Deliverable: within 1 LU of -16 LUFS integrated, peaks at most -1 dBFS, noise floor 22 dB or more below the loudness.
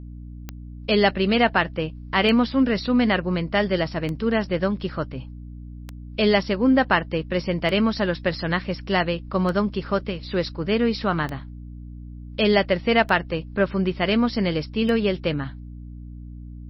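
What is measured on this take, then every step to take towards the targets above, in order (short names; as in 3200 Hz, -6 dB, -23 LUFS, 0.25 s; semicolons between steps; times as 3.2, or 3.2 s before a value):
clicks 10; hum 60 Hz; harmonics up to 300 Hz; hum level -36 dBFS; loudness -22.5 LUFS; peak -4.5 dBFS; loudness target -16.0 LUFS
-> de-click; de-hum 60 Hz, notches 5; gain +6.5 dB; limiter -1 dBFS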